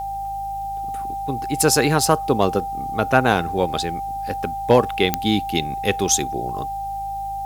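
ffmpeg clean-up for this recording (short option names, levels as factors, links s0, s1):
-af "adeclick=t=4,bandreject=f=53:t=h:w=4,bandreject=f=106:t=h:w=4,bandreject=f=159:t=h:w=4,bandreject=f=790:w=30,agate=range=0.0891:threshold=0.1"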